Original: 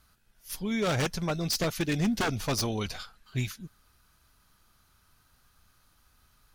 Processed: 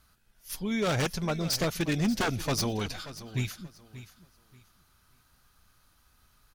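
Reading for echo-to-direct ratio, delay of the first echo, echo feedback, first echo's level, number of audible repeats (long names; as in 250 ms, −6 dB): −14.5 dB, 583 ms, 24%, −15.0 dB, 2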